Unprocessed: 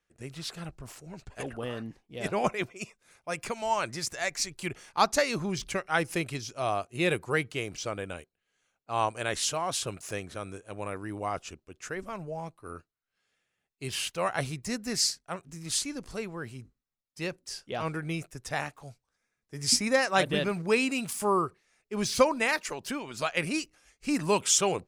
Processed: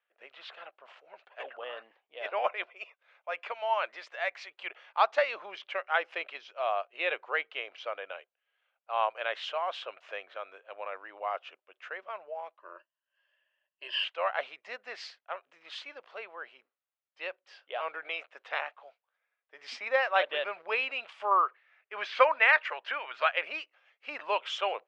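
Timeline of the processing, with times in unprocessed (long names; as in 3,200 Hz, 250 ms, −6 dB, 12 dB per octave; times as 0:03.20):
0:12.59–0:14.04: EQ curve with evenly spaced ripples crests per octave 1.3, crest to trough 15 dB
0:18.04–0:18.59: ceiling on every frequency bin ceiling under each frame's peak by 13 dB
0:21.31–0:23.32: parametric band 1,700 Hz +8.5 dB 1.4 octaves
whole clip: elliptic band-pass filter 560–3,200 Hz, stop band 70 dB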